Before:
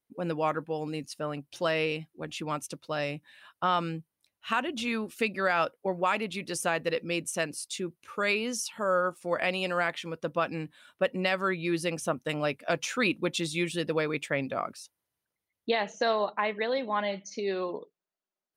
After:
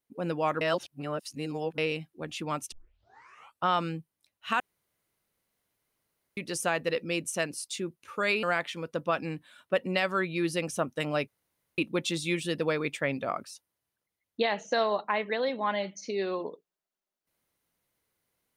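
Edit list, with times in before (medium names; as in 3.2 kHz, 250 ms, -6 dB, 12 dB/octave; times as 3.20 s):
0.61–1.78 s: reverse
2.72 s: tape start 0.92 s
4.60–6.37 s: room tone
8.43–9.72 s: delete
12.57–13.07 s: room tone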